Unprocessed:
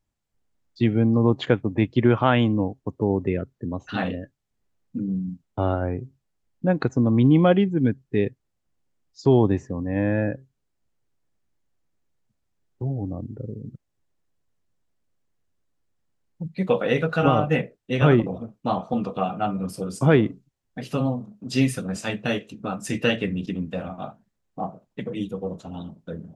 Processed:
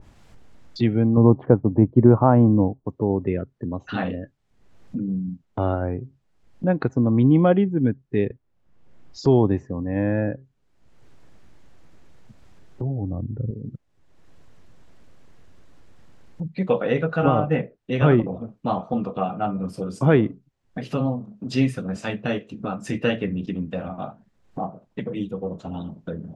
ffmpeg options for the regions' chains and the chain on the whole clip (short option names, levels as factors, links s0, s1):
-filter_complex "[0:a]asettb=1/sr,asplit=3[s0][s1][s2];[s0]atrim=end=1.174[s3];[s1]atrim=start=1.17:end=2.85,asetpts=PTS-STARTPTS,afade=t=in:d=0.004:c=qsin,afade=t=out:st=1.676:d=0.004:c=qsin,lowpass=f=1000:t=q:w=1.7,tiltshelf=f=630:g=5.5[s4];[s2]atrim=start=2.846[s5];[s3][s4]acrossfade=d=0.004:c1=hsin:c2=qsin[s6];[s6][s5]acrossfade=d=0.004:c1=qsin:c2=hsin,asettb=1/sr,asplit=3[s7][s8][s9];[s7]atrim=end=8.274[s10];[s8]atrim=start=8.27:end=9.29,asetpts=PTS-STARTPTS,afade=t=in:d=0.004:c=qsin,afade=t=out:st=1.016:d=0.004:c=qsin,highshelf=f=3500:g=-8.5,asplit=2[s11][s12];[s12]adelay=33,volume=0.708[s13];[s11][s13]amix=inputs=2:normalize=0,atrim=end_sample=44982[s14];[s9]atrim=start=9.286[s15];[s10][s14]acrossfade=d=0.004:c1=hsin:c2=qsin[s16];[s16][s15]acrossfade=d=0.004:c1=qsin:c2=hsin,asettb=1/sr,asplit=3[s17][s18][s19];[s17]atrim=end=12.914[s20];[s18]atrim=start=12.91:end=13.51,asetpts=PTS-STARTPTS,afade=t=in:d=0.004:c=qsin,afade=t=out:st=0.596:d=0.004:c=qsin,asubboost=boost=12:cutoff=210,asuperstop=centerf=5100:order=4:qfactor=3.4[s21];[s19]atrim=start=13.506[s22];[s20][s21]acrossfade=d=0.004:c1=hsin:c2=qsin[s23];[s23][s22]acrossfade=d=0.004:c1=qsin:c2=hsin,aemphasis=mode=reproduction:type=50fm,acompressor=mode=upward:threshold=0.0562:ratio=2.5,adynamicequalizer=threshold=0.01:dfrequency=1900:dqfactor=0.7:tfrequency=1900:tqfactor=0.7:attack=5:release=100:ratio=0.375:range=3.5:mode=cutabove:tftype=highshelf"